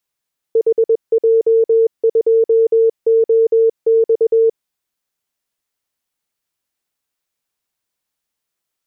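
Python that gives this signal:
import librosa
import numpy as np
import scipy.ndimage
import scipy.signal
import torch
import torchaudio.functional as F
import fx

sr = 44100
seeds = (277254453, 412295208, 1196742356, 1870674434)

y = fx.morse(sr, text='HJ2OX', wpm=21, hz=452.0, level_db=-8.5)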